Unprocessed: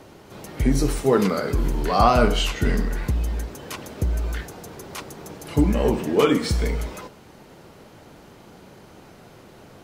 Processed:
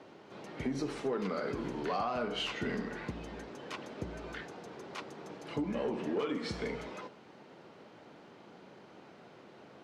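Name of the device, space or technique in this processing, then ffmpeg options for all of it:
AM radio: -af "highpass=190,lowpass=4100,acompressor=threshold=-22dB:ratio=10,asoftclip=type=tanh:threshold=-18dB,volume=-6.5dB"

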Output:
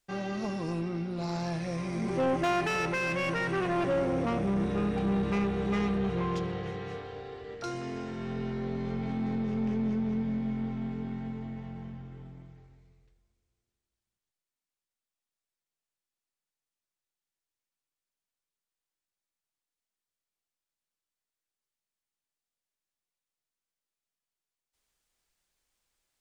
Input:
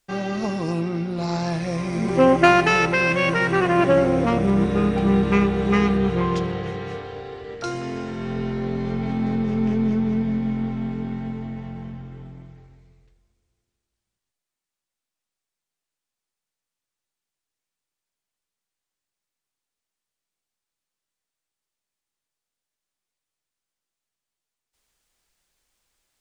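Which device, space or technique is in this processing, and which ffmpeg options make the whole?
saturation between pre-emphasis and de-emphasis: -af "highshelf=frequency=2500:gain=11,asoftclip=type=tanh:threshold=-15.5dB,highshelf=frequency=2500:gain=-11,volume=-7dB"

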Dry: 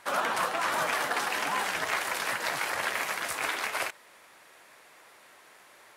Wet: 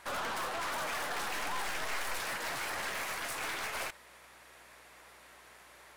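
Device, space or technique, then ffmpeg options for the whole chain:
valve amplifier with mains hum: -filter_complex "[0:a]aeval=exprs='(tanh(50.1*val(0)+0.35)-tanh(0.35))/50.1':channel_layout=same,aeval=exprs='val(0)+0.000282*(sin(2*PI*60*n/s)+sin(2*PI*2*60*n/s)/2+sin(2*PI*3*60*n/s)/3+sin(2*PI*4*60*n/s)/4+sin(2*PI*5*60*n/s)/5)':channel_layout=same,asettb=1/sr,asplit=3[link_01][link_02][link_03];[link_01]atrim=end=0.934[link_04];[link_02]atrim=start=0.93:end=2.19,asetpts=PTS-STARTPTS,afade=type=in:duration=0.004:curve=qsin,afade=type=out:start_time=1.256:duration=0.004:curve=qsin,asubboost=boost=9:cutoff=65[link_05];[link_03]atrim=start=2.186[link_06];[link_04][link_05]acrossfade=duration=0.004:curve1=hsin:curve2=qsin[link_07];[link_07][link_06]acrossfade=duration=0.004:curve1=qsin:curve2=hsin"

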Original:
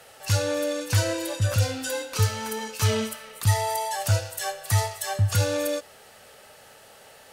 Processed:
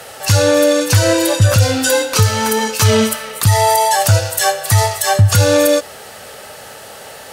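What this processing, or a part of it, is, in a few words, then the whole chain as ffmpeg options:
mastering chain: -af "highpass=43,equalizer=frequency=2600:width_type=o:width=0.77:gain=-2,acompressor=threshold=-23dB:ratio=2,alimiter=level_in=17dB:limit=-1dB:release=50:level=0:latency=1,volume=-1dB"

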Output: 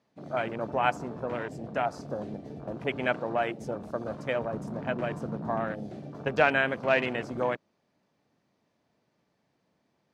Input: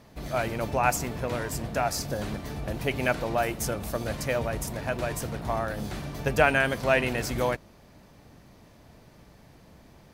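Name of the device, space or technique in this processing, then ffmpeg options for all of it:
over-cleaned archive recording: -filter_complex "[0:a]asettb=1/sr,asplit=3[link_01][link_02][link_03];[link_01]atrim=end=4.534[link_04];[link_02]atrim=start=4.53:end=5.75,asetpts=PTS-STARTPTS,afade=type=in:duration=0.004:curve=qsin,afade=type=out:start_time=1.216:duration=0.004:curve=qsin,equalizer=frequency=190:width_type=o:width=1.1:gain=7.5[link_05];[link_03]atrim=start=5.746[link_06];[link_04][link_05]acrossfade=duration=0.004:curve1=hsin:curve2=qsin[link_07];[link_07][link_06]acrossfade=duration=0.004:curve1=qsin:curve2=hsin,highpass=170,lowpass=6800,afwtdn=0.0178,volume=-1.5dB"

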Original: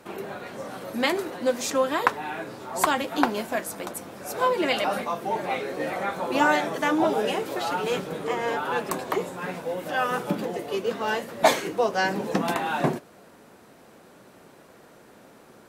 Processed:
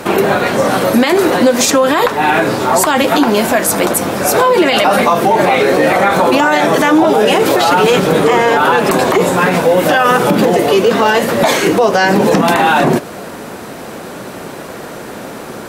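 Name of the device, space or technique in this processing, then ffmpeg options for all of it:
loud club master: -af "acompressor=threshold=-26dB:ratio=3,asoftclip=type=hard:threshold=-13dB,alimiter=level_in=25dB:limit=-1dB:release=50:level=0:latency=1,volume=-1dB"

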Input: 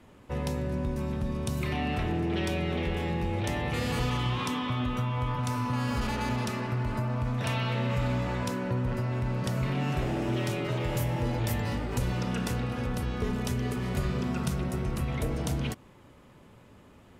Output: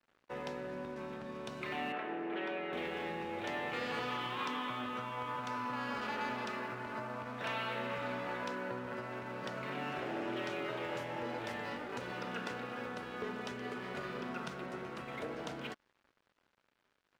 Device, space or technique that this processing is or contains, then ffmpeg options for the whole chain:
pocket radio on a weak battery: -filter_complex "[0:a]highpass=340,lowpass=3800,aeval=exprs='sgn(val(0))*max(abs(val(0))-0.00178,0)':channel_layout=same,equalizer=frequency=1500:width_type=o:width=0.51:gain=4.5,asettb=1/sr,asplit=3[link_01][link_02][link_03];[link_01]atrim=end=1.924[link_04];[link_02]atrim=start=1.92:end=2.73,asetpts=PTS-STARTPTS,afade=type=in:duration=0.004:curve=qsin,afade=type=out:start_time=0.806:duration=0.004:curve=qsin,acrossover=split=200 3100:gain=0.112 1 0.126[link_05][link_06][link_07];[link_05][link_06][link_07]amix=inputs=3:normalize=0[link_08];[link_03]atrim=start=2.726[link_09];[link_04][link_08]acrossfade=duration=0.004:curve1=hsin:curve2=qsin[link_10];[link_10][link_09]acrossfade=duration=0.004:curve1=qsin:curve2=hsin,volume=-4dB"

